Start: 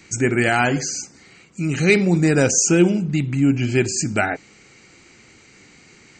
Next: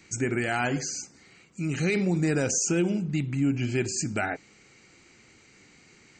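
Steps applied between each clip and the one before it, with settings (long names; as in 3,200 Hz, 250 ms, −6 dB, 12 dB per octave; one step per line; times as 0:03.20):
brickwall limiter −9.5 dBFS, peak gain reduction 7 dB
level −7 dB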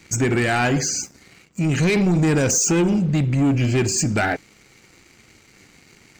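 low-shelf EQ 96 Hz +6.5 dB
leveller curve on the samples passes 2
level +2.5 dB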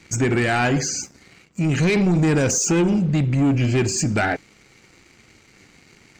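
high-shelf EQ 11,000 Hz −10.5 dB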